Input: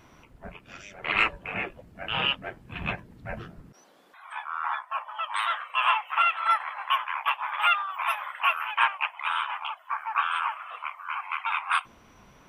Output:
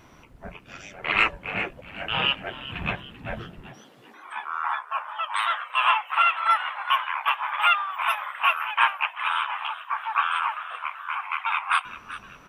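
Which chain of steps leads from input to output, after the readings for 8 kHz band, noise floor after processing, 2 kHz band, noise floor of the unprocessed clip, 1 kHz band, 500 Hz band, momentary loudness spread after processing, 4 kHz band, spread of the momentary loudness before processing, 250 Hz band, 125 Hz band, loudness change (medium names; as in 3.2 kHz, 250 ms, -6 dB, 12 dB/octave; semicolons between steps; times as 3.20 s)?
no reading, -51 dBFS, +3.0 dB, -56 dBFS, +2.5 dB, +2.5 dB, 15 LU, +3.0 dB, 15 LU, +3.0 dB, +2.5 dB, +2.5 dB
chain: frequency-shifting echo 388 ms, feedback 46%, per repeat +97 Hz, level -15 dB; trim +2.5 dB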